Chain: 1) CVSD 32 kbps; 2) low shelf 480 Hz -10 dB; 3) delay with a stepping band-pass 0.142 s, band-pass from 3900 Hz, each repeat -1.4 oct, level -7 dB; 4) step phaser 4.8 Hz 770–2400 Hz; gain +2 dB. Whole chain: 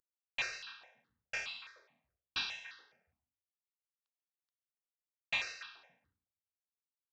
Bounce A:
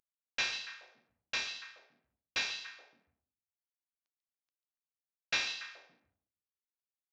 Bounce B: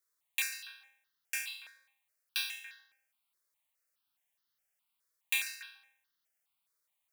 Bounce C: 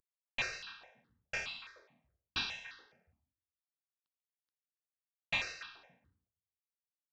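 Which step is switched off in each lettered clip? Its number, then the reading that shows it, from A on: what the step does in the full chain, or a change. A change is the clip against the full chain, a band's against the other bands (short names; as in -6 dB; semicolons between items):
4, 8 kHz band +4.0 dB; 1, 1 kHz band -10.5 dB; 2, 125 Hz band +8.0 dB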